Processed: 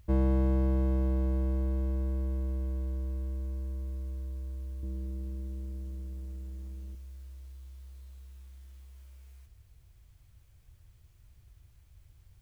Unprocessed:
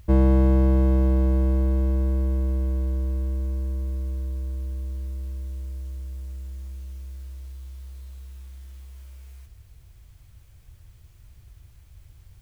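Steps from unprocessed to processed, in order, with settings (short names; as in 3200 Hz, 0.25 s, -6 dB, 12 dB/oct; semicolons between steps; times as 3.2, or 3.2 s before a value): 4.83–6.95 bell 240 Hz +15 dB 2 oct; gain -8.5 dB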